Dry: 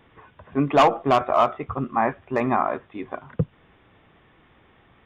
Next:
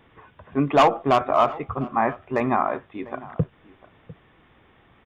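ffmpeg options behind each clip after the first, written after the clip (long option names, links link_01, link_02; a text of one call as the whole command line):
ffmpeg -i in.wav -filter_complex "[0:a]asplit=2[link_01][link_02];[link_02]adelay=699.7,volume=-19dB,highshelf=frequency=4000:gain=-15.7[link_03];[link_01][link_03]amix=inputs=2:normalize=0" out.wav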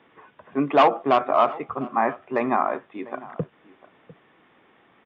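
ffmpeg -i in.wav -filter_complex "[0:a]acrossover=split=170 4600:gain=0.0794 1 0.0794[link_01][link_02][link_03];[link_01][link_02][link_03]amix=inputs=3:normalize=0" out.wav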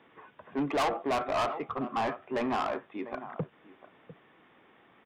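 ffmpeg -i in.wav -af "asoftclip=type=tanh:threshold=-22.5dB,volume=-2.5dB" out.wav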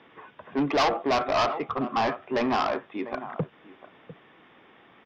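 ffmpeg -i in.wav -af "highshelf=frequency=6800:width_type=q:width=3:gain=-9.5,volume=5dB" out.wav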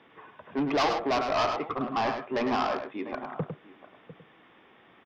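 ffmpeg -i in.wav -af "aecho=1:1:103:0.447,volume=-3dB" out.wav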